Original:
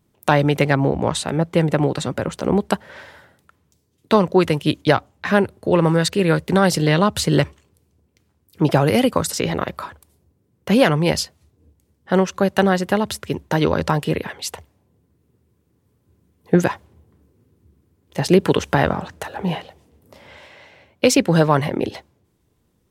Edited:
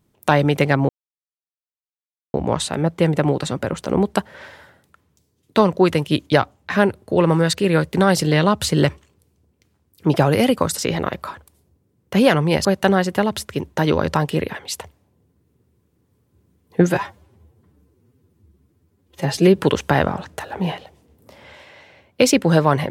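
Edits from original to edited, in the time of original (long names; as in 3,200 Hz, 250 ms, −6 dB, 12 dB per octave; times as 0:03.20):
0:00.89: splice in silence 1.45 s
0:11.20–0:12.39: remove
0:16.61–0:18.42: time-stretch 1.5×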